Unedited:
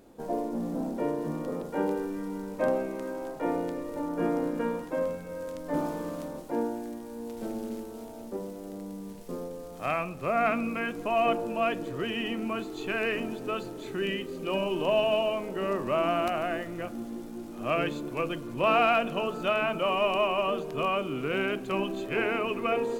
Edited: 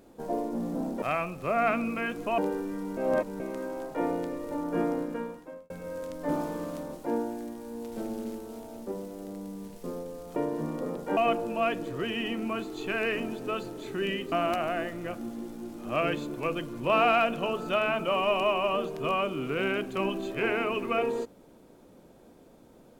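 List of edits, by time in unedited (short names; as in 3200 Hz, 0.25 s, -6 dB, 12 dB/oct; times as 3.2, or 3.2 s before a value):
1.02–1.83 swap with 9.81–11.17
2.42–2.85 reverse
4.28–5.15 fade out
14.32–16.06 cut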